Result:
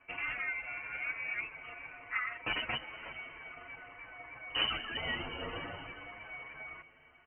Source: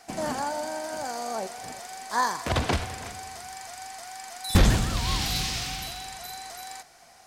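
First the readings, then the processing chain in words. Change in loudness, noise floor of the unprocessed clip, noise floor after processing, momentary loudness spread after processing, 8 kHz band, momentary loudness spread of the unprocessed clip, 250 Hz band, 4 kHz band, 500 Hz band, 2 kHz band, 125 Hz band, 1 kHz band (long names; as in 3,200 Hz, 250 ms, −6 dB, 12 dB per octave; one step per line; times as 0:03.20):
−9.0 dB, −54 dBFS, −61 dBFS, 14 LU, below −40 dB, 15 LU, −18.0 dB, −6.0 dB, −14.5 dB, −1.0 dB, −23.5 dB, −14.0 dB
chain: reverb reduction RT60 1 s
spectral tilt +2.5 dB per octave
brickwall limiter −20 dBFS, peak gain reduction 11 dB
notch comb filter 200 Hz
dead-zone distortion −52.5 dBFS
feedback delay with all-pass diffusion 481 ms, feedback 44%, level −15.5 dB
voice inversion scrambler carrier 3,000 Hz
barber-pole flanger 8.3 ms +0.54 Hz
level +2.5 dB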